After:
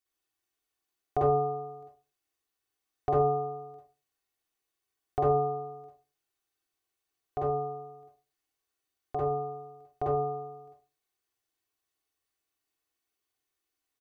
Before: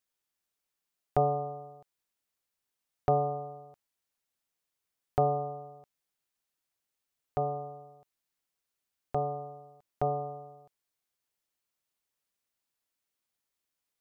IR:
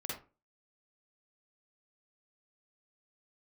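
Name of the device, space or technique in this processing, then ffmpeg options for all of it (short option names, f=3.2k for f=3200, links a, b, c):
microphone above a desk: -filter_complex "[0:a]aecho=1:1:2.7:0.66[a];[1:a]atrim=start_sample=2205[b];[a][b]afir=irnorm=-1:irlink=0"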